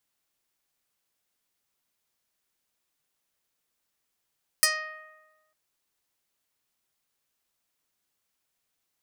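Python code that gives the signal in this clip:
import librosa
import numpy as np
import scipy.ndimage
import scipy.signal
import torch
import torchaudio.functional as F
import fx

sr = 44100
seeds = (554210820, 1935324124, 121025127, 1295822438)

y = fx.pluck(sr, length_s=0.9, note=75, decay_s=1.29, pick=0.17, brightness='medium')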